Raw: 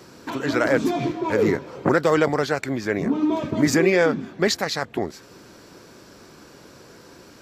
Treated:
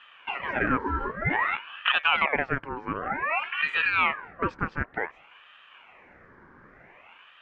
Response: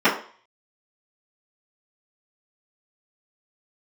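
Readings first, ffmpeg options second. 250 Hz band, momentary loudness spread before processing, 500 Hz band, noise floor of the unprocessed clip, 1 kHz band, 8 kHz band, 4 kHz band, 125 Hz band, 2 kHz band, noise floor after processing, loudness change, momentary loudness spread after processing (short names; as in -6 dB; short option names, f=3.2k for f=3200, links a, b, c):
-13.5 dB, 8 LU, -14.5 dB, -48 dBFS, 0.0 dB, under -35 dB, -1.0 dB, -8.0 dB, +1.5 dB, -55 dBFS, -4.5 dB, 10 LU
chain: -af "lowpass=f=900:t=q:w=3.7,lowshelf=f=430:g=-6,aeval=exprs='val(0)*sin(2*PI*1400*n/s+1400*0.55/0.54*sin(2*PI*0.54*n/s))':c=same,volume=-3dB"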